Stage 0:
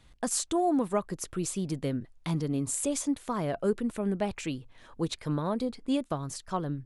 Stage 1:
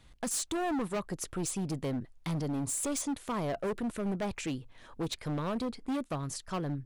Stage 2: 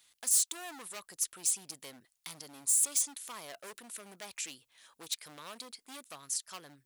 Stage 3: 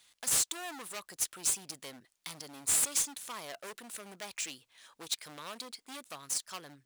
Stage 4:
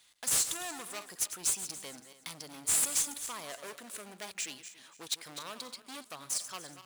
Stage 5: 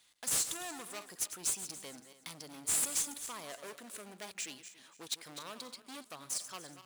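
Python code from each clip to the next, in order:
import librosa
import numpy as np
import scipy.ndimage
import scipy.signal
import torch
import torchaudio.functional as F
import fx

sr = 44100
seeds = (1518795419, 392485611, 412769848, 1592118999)

y1 = np.clip(x, -10.0 ** (-29.5 / 20.0), 10.0 ** (-29.5 / 20.0))
y2 = np.diff(y1, prepend=0.0)
y2 = y2 * 10.0 ** (6.5 / 20.0)
y3 = scipy.ndimage.median_filter(y2, 3, mode='constant')
y3 = y3 * 10.0 ** (3.0 / 20.0)
y4 = fx.reverse_delay_fb(y3, sr, ms=142, feedback_pct=50, wet_db=-11)
y5 = fx.peak_eq(y4, sr, hz=270.0, db=3.0, octaves=2.3)
y5 = y5 * 10.0 ** (-3.5 / 20.0)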